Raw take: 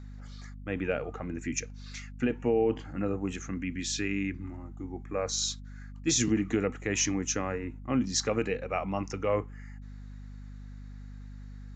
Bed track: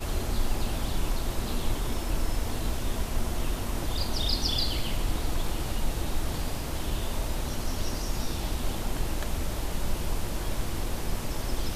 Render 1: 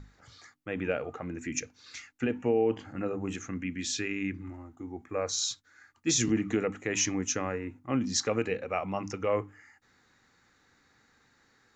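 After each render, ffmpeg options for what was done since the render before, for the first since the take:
-af "bandreject=f=50:t=h:w=6,bandreject=f=100:t=h:w=6,bandreject=f=150:t=h:w=6,bandreject=f=200:t=h:w=6,bandreject=f=250:t=h:w=6,bandreject=f=300:t=h:w=6"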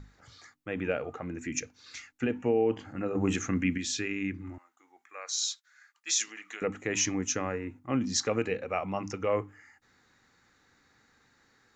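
-filter_complex "[0:a]asettb=1/sr,asplit=3[a][b][c];[a]atrim=end=3.154[d];[b]atrim=start=3.15:end=3.78,asetpts=PTS-STARTPTS,afade=t=in:d=0.004:c=qsin,afade=t=out:st=0.626:d=0.004:c=qsin,acontrast=79[e];[c]atrim=start=3.776[f];[d][e]acrossfade=d=0.004:c1=hsin:c2=qsin[g];[g][f]acrossfade=d=0.004:c1=qsin:c2=hsin,asettb=1/sr,asplit=3[h][i][j];[h]atrim=end=4.584[k];[i]atrim=start=4.58:end=6.62,asetpts=PTS-STARTPTS,afade=t=in:d=0.004:c=qsin,afade=t=out:st=2.036:d=0.004:c=qsin,highpass=1.4k[l];[j]atrim=start=6.616[m];[k][l]acrossfade=d=0.004:c1=hsin:c2=qsin[n];[n][m]acrossfade=d=0.004:c1=qsin:c2=hsin"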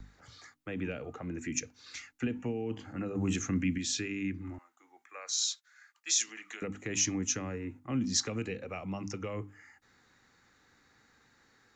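-filter_complex "[0:a]acrossover=split=250|770|4100[a][b][c][d];[b]alimiter=level_in=5dB:limit=-24dB:level=0:latency=1,volume=-5dB[e];[a][e][c][d]amix=inputs=4:normalize=0,acrossover=split=340|3000[f][g][h];[g]acompressor=threshold=-43dB:ratio=4[i];[f][i][h]amix=inputs=3:normalize=0"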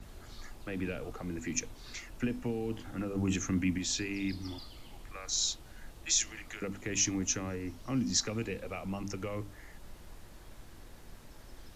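-filter_complex "[1:a]volume=-21dB[a];[0:a][a]amix=inputs=2:normalize=0"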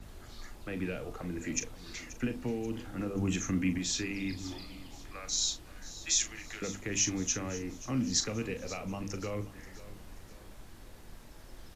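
-filter_complex "[0:a]asplit=2[a][b];[b]adelay=39,volume=-10.5dB[c];[a][c]amix=inputs=2:normalize=0,aecho=1:1:532|1064|1596|2128:0.15|0.0673|0.0303|0.0136"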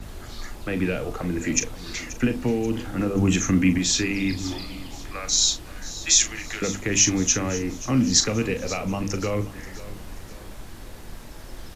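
-af "volume=11dB"

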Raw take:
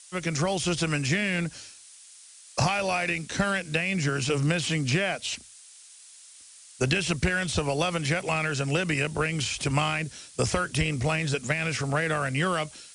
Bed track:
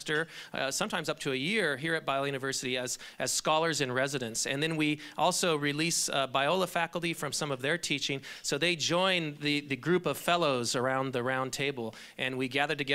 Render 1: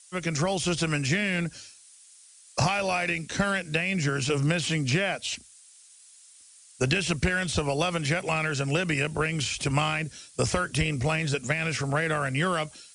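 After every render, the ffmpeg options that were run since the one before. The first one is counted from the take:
-af "afftdn=nr=6:nf=-50"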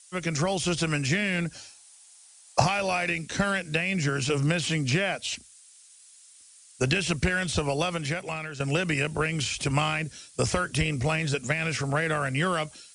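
-filter_complex "[0:a]asettb=1/sr,asplit=3[a][b][c];[a]atrim=end=1.554[d];[b]atrim=start=1.55:end=2.62,asetpts=PTS-STARTPTS,afade=t=in:d=0.004:c=qsin,afade=t=out:st=1.066:d=0.004:c=qsin,equalizer=f=790:w=1.9:g=11.5[e];[c]atrim=start=2.616[f];[d][e]acrossfade=d=0.004:c1=hsin:c2=qsin[g];[g][f]acrossfade=d=0.004:c1=qsin:c2=hsin,asplit=2[h][i];[h]atrim=end=8.6,asetpts=PTS-STARTPTS,afade=t=out:st=7.71:d=0.89:silence=0.281838[j];[i]atrim=start=8.6,asetpts=PTS-STARTPTS,afade=t=in:d=0.004:c=hsin:silence=0.281838[k];[j][k]concat=n=2:v=0:a=1"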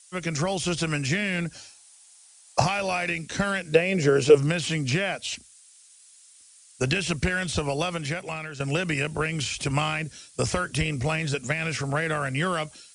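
-filter_complex "[0:a]asettb=1/sr,asplit=3[a][b][c];[a]atrim=end=3.734[d];[b]atrim=start=3.73:end=4.35,asetpts=PTS-STARTPTS,afade=t=in:d=0.004:c=qsin,afade=t=out:st=0.616:d=0.004:c=qsin,equalizer=f=460:t=o:w=0.96:g=15[e];[c]atrim=start=4.346[f];[d][e]acrossfade=d=0.004:c1=hsin:c2=qsin[g];[g][f]acrossfade=d=0.004:c1=qsin:c2=hsin"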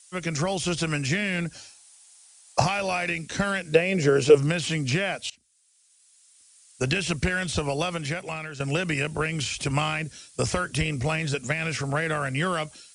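-filter_complex "[0:a]asplit=2[a][b];[a]atrim=end=5.3,asetpts=PTS-STARTPTS,afade=t=out:st=5.296:d=0.004:c=hsin:silence=0.0707946[c];[b]atrim=start=5.3,asetpts=PTS-STARTPTS,afade=t=in:d=1.68:silence=0.0707946[d];[c][d]concat=n=2:v=0:a=1"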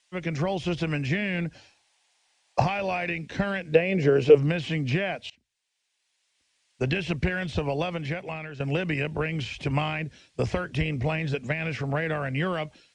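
-af "lowpass=2.7k,equalizer=f=1.3k:w=3.1:g=-7.5"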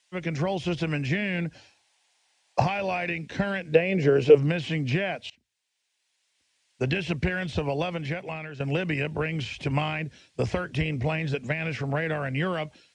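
-af "highpass=58,bandreject=f=1.2k:w=24"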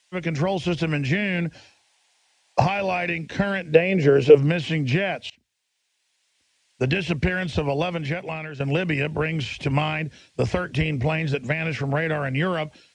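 -af "volume=4dB,alimiter=limit=-2dB:level=0:latency=1"

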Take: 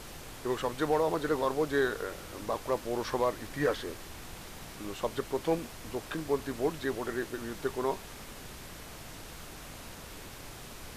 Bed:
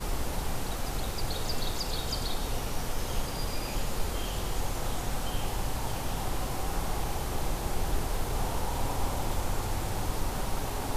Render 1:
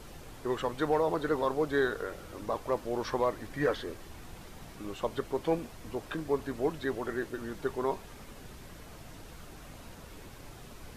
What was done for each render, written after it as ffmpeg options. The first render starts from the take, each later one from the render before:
-af "afftdn=nr=7:nf=-46"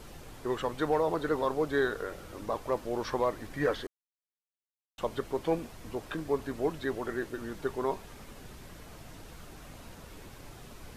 -filter_complex "[0:a]asplit=3[a][b][c];[a]atrim=end=3.87,asetpts=PTS-STARTPTS,afade=t=out:st=3.866:d=0.004:c=hsin[d];[b]atrim=start=3.87:end=4.98,asetpts=PTS-STARTPTS,volume=0[e];[c]atrim=start=4.98,asetpts=PTS-STARTPTS,afade=t=in:d=0.004:c=hsin[f];[d][e][f]concat=n=3:v=0:a=1"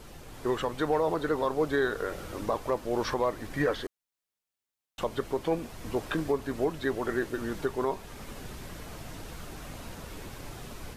-af "alimiter=limit=-23dB:level=0:latency=1:release=407,dynaudnorm=f=280:g=3:m=6dB"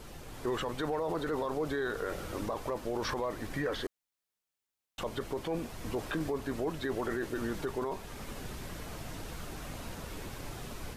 -af "alimiter=level_in=1dB:limit=-24dB:level=0:latency=1:release=17,volume=-1dB"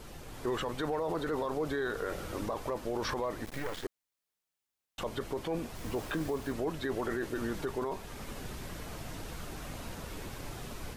-filter_complex "[0:a]asettb=1/sr,asplit=3[a][b][c];[a]atrim=end=3.454[d];[b]atrim=start=3.45:end=3.85,asetpts=PTS-STARTPTS,afade=t=in:d=0.004:c=qsin,afade=t=out:st=0.396:d=0.004:c=qsin,acrusher=bits=5:dc=4:mix=0:aa=0.000001[e];[c]atrim=start=3.846[f];[d][e]acrossfade=d=0.004:c1=hsin:c2=qsin[g];[g][f]acrossfade=d=0.004:c1=qsin:c2=hsin,asettb=1/sr,asplit=3[h][i][j];[h]atrim=end=5.754[k];[i]atrim=start=5.75:end=6.53,asetpts=PTS-STARTPTS,afade=t=in:d=0.004:c=qsin,afade=t=out:st=0.776:d=0.004:c=qsin,acrusher=bits=7:mix=0:aa=0.5[l];[j]atrim=start=6.526[m];[k][l]acrossfade=d=0.004:c1=hsin:c2=qsin[n];[n][m]acrossfade=d=0.004:c1=qsin:c2=hsin"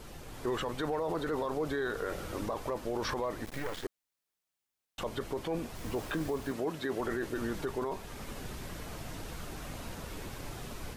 -filter_complex "[0:a]asettb=1/sr,asplit=3[a][b][c];[a]atrim=end=6.514[d];[b]atrim=start=6.51:end=7,asetpts=PTS-STARTPTS,afade=t=in:d=0.004:c=qsin,afade=t=out:st=0.486:d=0.004:c=qsin,highpass=130[e];[c]atrim=start=6.996[f];[d][e]acrossfade=d=0.004:c1=hsin:c2=qsin[g];[g][f]acrossfade=d=0.004:c1=qsin:c2=hsin"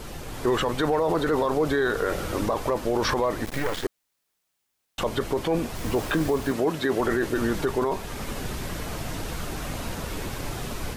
-af "volume=10dB"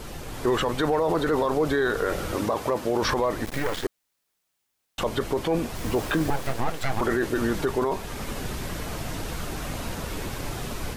-filter_complex "[0:a]asettb=1/sr,asplit=3[a][b][c];[a]atrim=end=2.364[d];[b]atrim=start=2.36:end=3.02,asetpts=PTS-STARTPTS,afade=t=in:d=0.004:c=qsin,afade=t=out:st=0.656:d=0.004:c=qsin,highpass=86[e];[c]atrim=start=3.016[f];[d][e]acrossfade=d=0.004:c1=hsin:c2=qsin[g];[g][f]acrossfade=d=0.004:c1=qsin:c2=hsin,asettb=1/sr,asplit=3[h][i][j];[h]atrim=end=6.304[k];[i]atrim=start=6.3:end=7.01,asetpts=PTS-STARTPTS,afade=t=in:d=0.004:c=qsin,afade=t=out:st=0.706:d=0.004:c=qsin,aeval=exprs='abs(val(0))':c=same[l];[j]atrim=start=7.006[m];[k][l]acrossfade=d=0.004:c1=hsin:c2=qsin[n];[n][m]acrossfade=d=0.004:c1=qsin:c2=hsin"

